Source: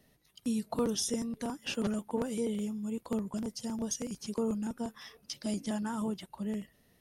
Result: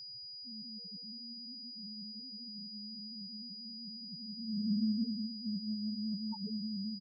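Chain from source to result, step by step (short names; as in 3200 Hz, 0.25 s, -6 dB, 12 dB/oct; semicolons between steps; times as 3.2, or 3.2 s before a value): in parallel at 0 dB: limiter -30 dBFS, peak gain reduction 10.5 dB; on the sum: HPF 67 Hz 24 dB/oct; reverse bouncing-ball echo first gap 0.18 s, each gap 1.1×, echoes 5; loudest bins only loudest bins 1; bell 480 Hz -12 dB 1.7 oct; reverse; compressor, threshold -43 dBFS, peak gain reduction 10.5 dB; reverse; low-pass sweep 100 Hz -> 1400 Hz, 4.1–6.44; whine 4900 Hz -51 dBFS; gain +6 dB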